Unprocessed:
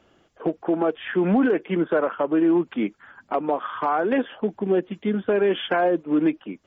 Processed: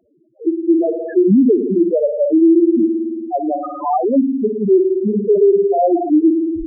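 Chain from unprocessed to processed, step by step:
turntable brake at the end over 0.36 s
spring reverb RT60 2.2 s, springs 55 ms, chirp 65 ms, DRR 1.5 dB
spectral peaks only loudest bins 2
boost into a limiter +14.5 dB
level −4.5 dB

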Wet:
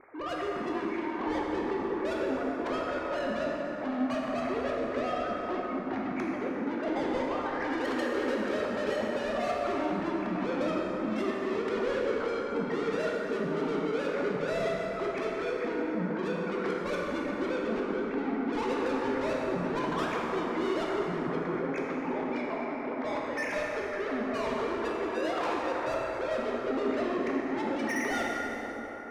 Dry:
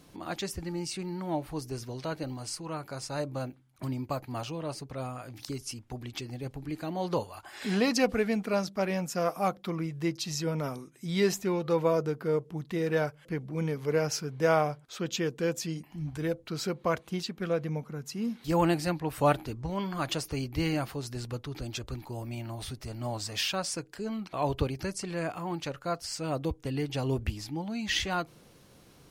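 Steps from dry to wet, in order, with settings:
three sine waves on the formant tracks
Butterworth low-pass 2,300 Hz 96 dB per octave
in parallel at +1.5 dB: compressor whose output falls as the input rises −32 dBFS
on the sum: brickwall limiter −21 dBFS, peak gain reduction 10.5 dB
soft clipping −36.5 dBFS, distortion −6 dB
dense smooth reverb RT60 4.8 s, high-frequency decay 0.45×, DRR −4 dB
level +2.5 dB

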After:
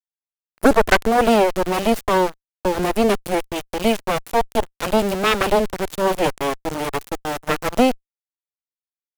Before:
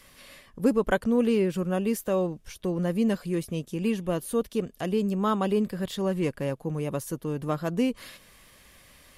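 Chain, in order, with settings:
centre clipping without the shift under −30 dBFS
harmonic generator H 6 −6 dB, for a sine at −9.5 dBFS
level +5 dB

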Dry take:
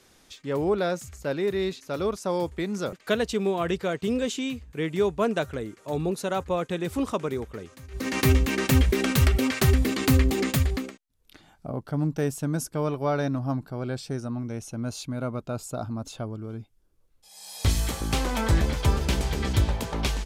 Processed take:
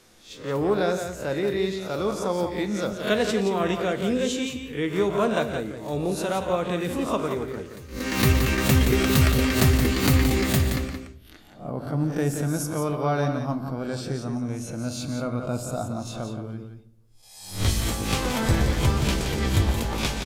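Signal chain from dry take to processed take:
peak hold with a rise ahead of every peak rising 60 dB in 0.36 s
single-tap delay 173 ms −7.5 dB
on a send at −8.5 dB: convolution reverb RT60 0.65 s, pre-delay 4 ms

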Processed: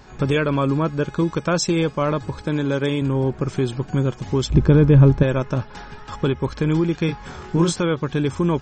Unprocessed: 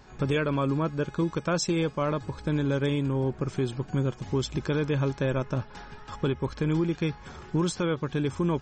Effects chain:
0:02.41–0:03.02: high-pass filter 170 Hz 6 dB per octave
0:04.50–0:05.23: spectral tilt −3.5 dB per octave
0:07.06–0:07.76: double-tracking delay 24 ms −4.5 dB
level +6.5 dB

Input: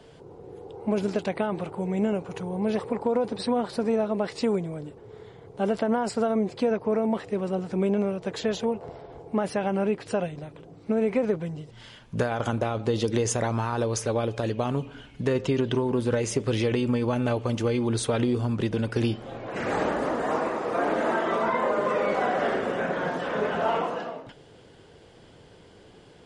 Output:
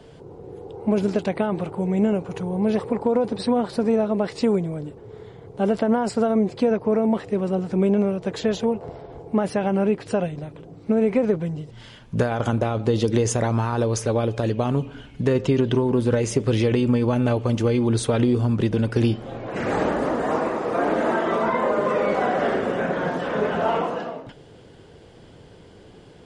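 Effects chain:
low-shelf EQ 460 Hz +5 dB
level +1.5 dB

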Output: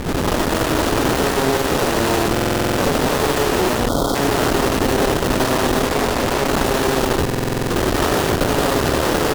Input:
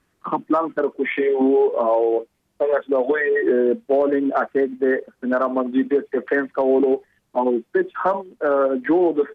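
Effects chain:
compressor on every frequency bin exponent 0.2
high-pass filter 200 Hz 6 dB per octave
high-shelf EQ 2,900 Hz −4 dB
comparator with hysteresis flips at −16 dBFS
notch filter 2,200 Hz, Q 5.1
loudspeakers that aren't time-aligned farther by 27 metres −2 dB, 60 metres −2 dB
harmonic generator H 3 −17 dB, 8 −20 dB, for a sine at 6.5 dBFS
0:03.88–0:04.15: gain on a spectral selection 1,500–3,100 Hz −22 dB
buffer that repeats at 0:02.32/0:07.24, samples 2,048, times 9
0:05.87–0:06.51: highs frequency-modulated by the lows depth 0.91 ms
level −5.5 dB

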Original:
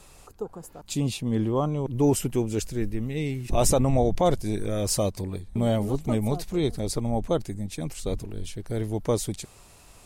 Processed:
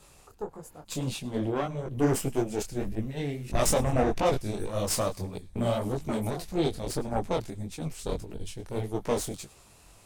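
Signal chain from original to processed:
harmonic generator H 8 −18 dB, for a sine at −8 dBFS
delay with a high-pass on its return 104 ms, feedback 45%, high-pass 1,900 Hz, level −21.5 dB
micro pitch shift up and down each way 58 cents

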